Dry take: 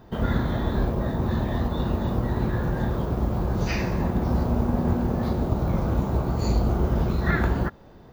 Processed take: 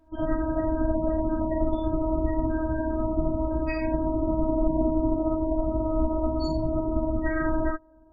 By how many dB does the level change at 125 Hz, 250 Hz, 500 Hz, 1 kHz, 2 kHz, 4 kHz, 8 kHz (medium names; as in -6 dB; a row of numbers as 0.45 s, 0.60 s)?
-9.0 dB, +0.5 dB, +3.0 dB, -1.5 dB, -4.5 dB, no reading, under -15 dB